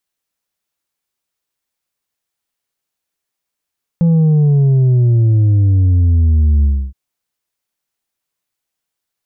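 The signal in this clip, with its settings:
bass drop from 170 Hz, over 2.92 s, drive 4 dB, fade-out 0.29 s, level −8.5 dB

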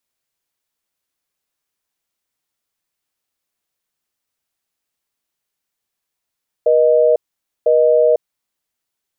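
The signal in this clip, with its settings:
call progress tone busy tone, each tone −12 dBFS 1.57 s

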